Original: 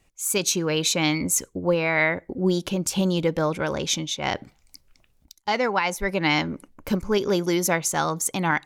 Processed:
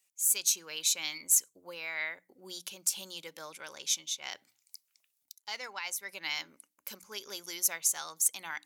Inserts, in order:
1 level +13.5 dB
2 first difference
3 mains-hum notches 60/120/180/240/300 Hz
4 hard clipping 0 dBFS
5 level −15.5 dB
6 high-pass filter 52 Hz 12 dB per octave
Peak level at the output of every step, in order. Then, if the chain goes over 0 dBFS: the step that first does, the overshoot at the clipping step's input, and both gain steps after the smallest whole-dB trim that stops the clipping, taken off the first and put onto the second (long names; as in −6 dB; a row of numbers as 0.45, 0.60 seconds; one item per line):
+4.5, +4.0, +4.0, 0.0, −15.5, −15.5 dBFS
step 1, 4.0 dB
step 1 +9.5 dB, step 5 −11.5 dB